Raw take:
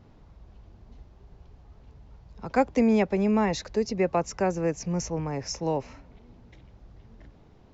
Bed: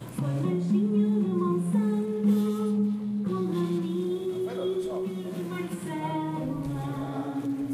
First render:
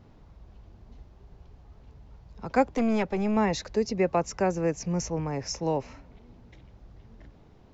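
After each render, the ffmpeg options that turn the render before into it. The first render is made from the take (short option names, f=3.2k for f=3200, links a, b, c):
-filter_complex "[0:a]asettb=1/sr,asplit=3[a][b][c];[a]atrim=end=2.674[d];[b]atrim=start=2.67:end=3.37,asetpts=PTS-STARTPTS,afade=t=in:d=0.004:c=qsin,afade=t=out:st=0.696:d=0.004:c=qsin,aeval=exprs='(tanh(10*val(0)+0.3)-tanh(0.3))/10':c=same[e];[c]atrim=start=3.366[f];[d][e]acrossfade=d=0.004:c1=hsin:c2=qsin[g];[g][f]acrossfade=d=0.004:c1=qsin:c2=hsin"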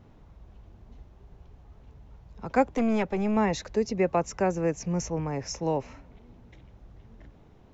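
-af "equalizer=f=4.7k:w=3.1:g=-5"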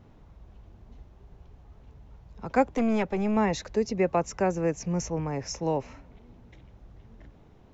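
-af anull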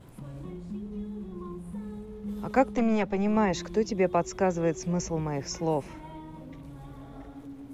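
-filter_complex "[1:a]volume=-13.5dB[a];[0:a][a]amix=inputs=2:normalize=0"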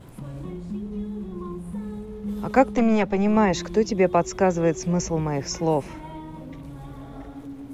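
-af "volume=5.5dB"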